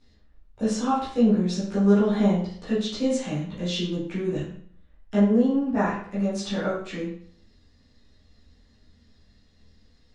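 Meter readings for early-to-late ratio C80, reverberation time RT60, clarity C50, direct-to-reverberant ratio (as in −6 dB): 7.0 dB, 0.55 s, 3.5 dB, −11.5 dB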